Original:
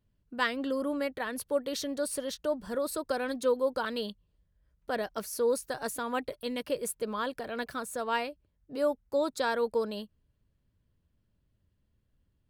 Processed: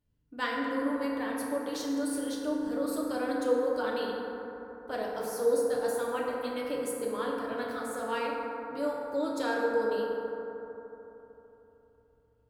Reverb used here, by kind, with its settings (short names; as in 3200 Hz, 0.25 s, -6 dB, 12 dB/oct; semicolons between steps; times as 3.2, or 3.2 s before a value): FDN reverb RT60 3.5 s, high-frequency decay 0.3×, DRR -4 dB; gain -6 dB